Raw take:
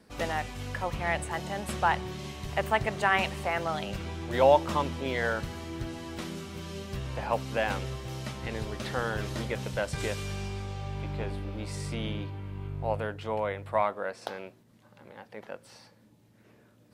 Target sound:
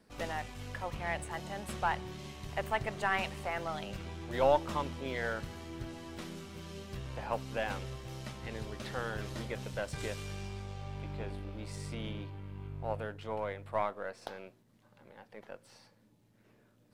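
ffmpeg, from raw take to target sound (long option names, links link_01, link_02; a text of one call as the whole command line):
ffmpeg -i in.wav -af "aeval=exprs='if(lt(val(0),0),0.708*val(0),val(0))':channel_layout=same,volume=-5dB" out.wav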